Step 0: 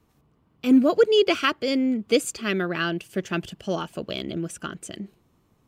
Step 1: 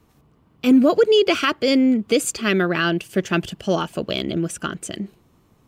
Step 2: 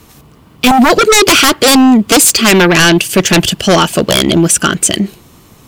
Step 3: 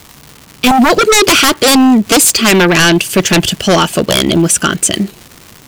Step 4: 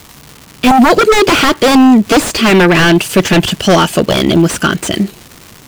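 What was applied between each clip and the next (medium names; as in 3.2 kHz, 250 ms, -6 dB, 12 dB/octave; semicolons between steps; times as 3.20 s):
peak limiter -14 dBFS, peak gain reduction 6 dB; trim +6.5 dB
treble shelf 2.3 kHz +10 dB; sine folder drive 13 dB, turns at -1.5 dBFS; trim -1.5 dB
crackle 310 per s -21 dBFS; trim -1 dB
slew-rate limiter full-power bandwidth 670 Hz; trim +1.5 dB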